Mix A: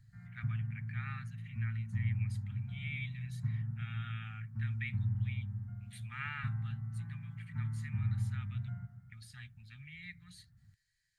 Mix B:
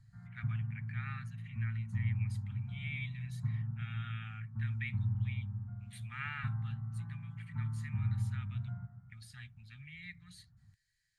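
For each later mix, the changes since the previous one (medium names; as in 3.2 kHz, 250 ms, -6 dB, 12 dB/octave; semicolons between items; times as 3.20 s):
background: add resonant low-pass 1.1 kHz, resonance Q 1.7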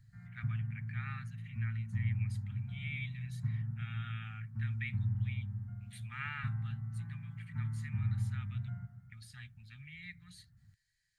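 background: remove resonant low-pass 1.1 kHz, resonance Q 1.7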